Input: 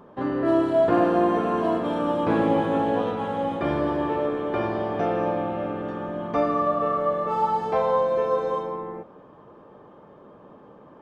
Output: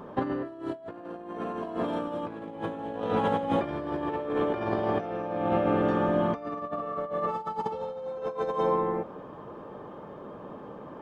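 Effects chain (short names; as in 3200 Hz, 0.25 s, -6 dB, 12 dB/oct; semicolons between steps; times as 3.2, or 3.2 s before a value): spectral repair 7.61–8.35, 620–2500 Hz both; negative-ratio compressor -29 dBFS, ratio -0.5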